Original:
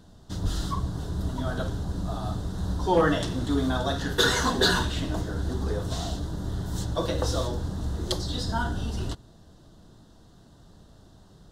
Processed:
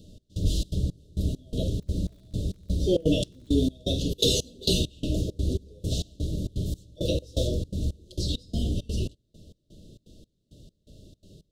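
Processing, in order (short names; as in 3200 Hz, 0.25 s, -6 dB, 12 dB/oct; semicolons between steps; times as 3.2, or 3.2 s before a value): Chebyshev band-stop 610–2700 Hz, order 5; step gate "xx..xxx.xx..." 167 bpm -24 dB; 1.52–3.66 crackle 71/s -54 dBFS; gain +3.5 dB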